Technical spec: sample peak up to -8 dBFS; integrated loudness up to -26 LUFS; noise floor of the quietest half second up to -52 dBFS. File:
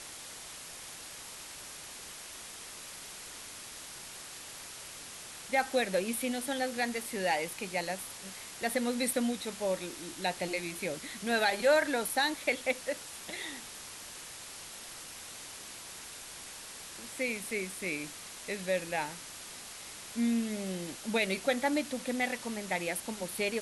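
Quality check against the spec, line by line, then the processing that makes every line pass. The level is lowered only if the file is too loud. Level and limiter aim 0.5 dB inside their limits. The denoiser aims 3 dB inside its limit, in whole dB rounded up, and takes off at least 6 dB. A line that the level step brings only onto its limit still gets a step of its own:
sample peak -15.0 dBFS: OK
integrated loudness -35.0 LUFS: OK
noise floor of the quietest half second -46 dBFS: fail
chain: denoiser 9 dB, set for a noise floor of -46 dBFS

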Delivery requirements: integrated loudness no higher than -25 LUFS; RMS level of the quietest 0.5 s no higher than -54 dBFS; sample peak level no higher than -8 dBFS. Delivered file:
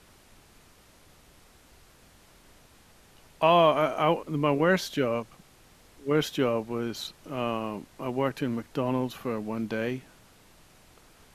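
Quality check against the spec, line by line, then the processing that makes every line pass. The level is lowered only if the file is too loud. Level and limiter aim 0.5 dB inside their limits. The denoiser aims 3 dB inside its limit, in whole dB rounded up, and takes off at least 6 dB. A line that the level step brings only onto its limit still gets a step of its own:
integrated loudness -27.5 LUFS: OK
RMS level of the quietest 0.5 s -57 dBFS: OK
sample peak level -9.5 dBFS: OK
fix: none

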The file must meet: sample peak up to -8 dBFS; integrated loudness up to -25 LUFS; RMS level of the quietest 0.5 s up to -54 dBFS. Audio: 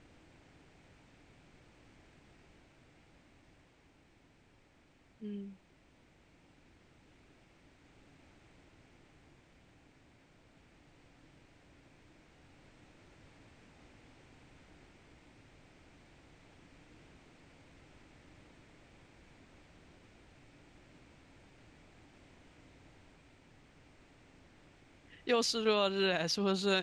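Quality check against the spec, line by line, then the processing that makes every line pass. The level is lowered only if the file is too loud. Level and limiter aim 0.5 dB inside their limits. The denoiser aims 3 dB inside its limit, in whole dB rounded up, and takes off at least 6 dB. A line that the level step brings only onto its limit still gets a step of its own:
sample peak -18.0 dBFS: OK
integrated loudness -33.0 LUFS: OK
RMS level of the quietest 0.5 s -66 dBFS: OK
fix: none

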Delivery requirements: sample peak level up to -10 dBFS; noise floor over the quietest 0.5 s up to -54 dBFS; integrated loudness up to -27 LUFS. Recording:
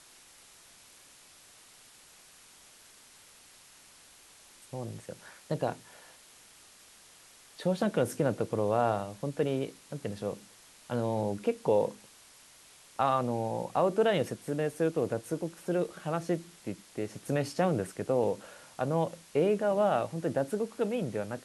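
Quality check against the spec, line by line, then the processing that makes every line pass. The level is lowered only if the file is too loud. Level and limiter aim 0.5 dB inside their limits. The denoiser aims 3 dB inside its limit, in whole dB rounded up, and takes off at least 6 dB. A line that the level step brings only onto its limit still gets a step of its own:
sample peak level -14.0 dBFS: OK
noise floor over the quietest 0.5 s -57 dBFS: OK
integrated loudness -31.5 LUFS: OK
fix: none

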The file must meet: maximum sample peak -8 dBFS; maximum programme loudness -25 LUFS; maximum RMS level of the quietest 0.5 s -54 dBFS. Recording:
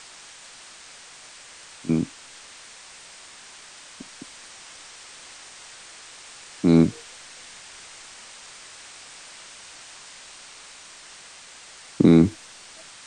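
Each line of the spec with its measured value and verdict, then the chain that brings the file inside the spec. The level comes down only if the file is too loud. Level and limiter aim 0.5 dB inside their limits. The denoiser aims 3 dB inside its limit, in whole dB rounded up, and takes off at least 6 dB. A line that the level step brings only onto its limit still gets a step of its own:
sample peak -5.0 dBFS: fail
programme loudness -20.5 LUFS: fail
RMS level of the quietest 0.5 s -46 dBFS: fail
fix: denoiser 6 dB, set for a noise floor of -46 dBFS; gain -5 dB

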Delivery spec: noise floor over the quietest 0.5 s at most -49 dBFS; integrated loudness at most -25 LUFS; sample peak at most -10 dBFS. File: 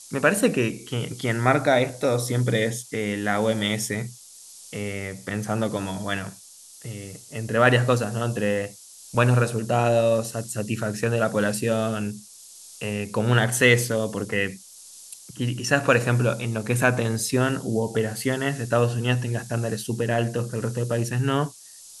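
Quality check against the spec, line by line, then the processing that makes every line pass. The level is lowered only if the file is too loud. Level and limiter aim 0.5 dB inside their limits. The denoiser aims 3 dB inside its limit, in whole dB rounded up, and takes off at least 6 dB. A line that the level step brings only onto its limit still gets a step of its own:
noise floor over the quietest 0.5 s -47 dBFS: fail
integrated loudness -24.0 LUFS: fail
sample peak -4.0 dBFS: fail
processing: denoiser 6 dB, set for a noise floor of -47 dBFS; gain -1.5 dB; limiter -10.5 dBFS

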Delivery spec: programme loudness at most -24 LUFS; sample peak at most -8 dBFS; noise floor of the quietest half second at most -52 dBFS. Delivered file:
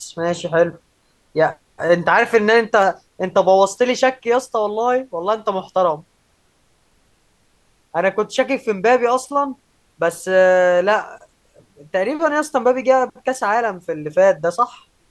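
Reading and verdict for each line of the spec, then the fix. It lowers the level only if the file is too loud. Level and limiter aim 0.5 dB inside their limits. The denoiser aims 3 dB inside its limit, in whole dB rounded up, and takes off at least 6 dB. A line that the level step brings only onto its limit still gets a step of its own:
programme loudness -18.0 LUFS: fail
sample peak -2.5 dBFS: fail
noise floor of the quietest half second -60 dBFS: OK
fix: gain -6.5 dB

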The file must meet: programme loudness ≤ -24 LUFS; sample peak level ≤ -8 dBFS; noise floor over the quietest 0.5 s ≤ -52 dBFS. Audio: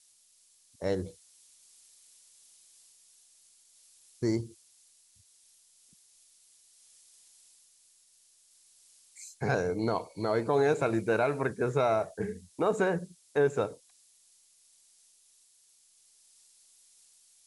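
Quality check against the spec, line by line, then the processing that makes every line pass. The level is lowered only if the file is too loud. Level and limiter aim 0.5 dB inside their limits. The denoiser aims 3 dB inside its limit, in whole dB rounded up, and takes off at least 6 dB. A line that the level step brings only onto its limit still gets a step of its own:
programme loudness -30.0 LUFS: OK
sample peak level -15.0 dBFS: OK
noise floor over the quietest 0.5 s -64 dBFS: OK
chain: none

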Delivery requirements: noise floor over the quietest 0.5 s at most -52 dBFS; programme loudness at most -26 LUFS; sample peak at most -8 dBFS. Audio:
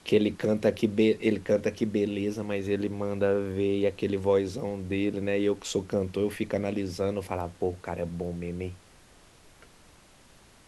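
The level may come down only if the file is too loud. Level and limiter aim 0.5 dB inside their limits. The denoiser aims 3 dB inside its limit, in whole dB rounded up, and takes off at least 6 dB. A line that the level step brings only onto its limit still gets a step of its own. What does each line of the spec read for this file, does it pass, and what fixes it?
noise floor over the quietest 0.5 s -56 dBFS: OK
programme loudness -28.5 LUFS: OK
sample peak -10.0 dBFS: OK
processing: none

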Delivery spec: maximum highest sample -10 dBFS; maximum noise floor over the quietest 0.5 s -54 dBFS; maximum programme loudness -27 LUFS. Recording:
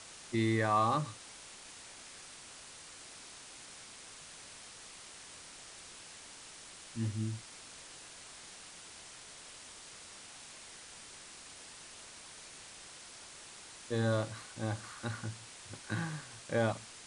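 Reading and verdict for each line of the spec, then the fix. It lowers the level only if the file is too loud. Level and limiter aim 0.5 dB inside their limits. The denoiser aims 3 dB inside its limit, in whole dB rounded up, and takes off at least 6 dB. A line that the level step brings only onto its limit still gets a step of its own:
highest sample -18.0 dBFS: OK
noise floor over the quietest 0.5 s -52 dBFS: fail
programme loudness -40.5 LUFS: OK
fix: denoiser 6 dB, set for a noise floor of -52 dBFS

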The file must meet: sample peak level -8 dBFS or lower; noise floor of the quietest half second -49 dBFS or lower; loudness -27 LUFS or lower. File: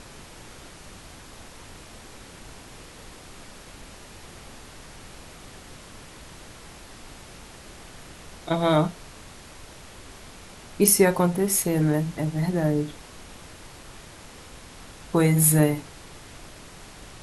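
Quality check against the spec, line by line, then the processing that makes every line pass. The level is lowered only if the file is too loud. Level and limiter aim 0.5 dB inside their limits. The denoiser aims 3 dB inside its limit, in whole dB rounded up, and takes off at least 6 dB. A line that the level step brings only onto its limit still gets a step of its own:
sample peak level -5.0 dBFS: fail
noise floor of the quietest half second -45 dBFS: fail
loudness -22.0 LUFS: fail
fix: gain -5.5 dB

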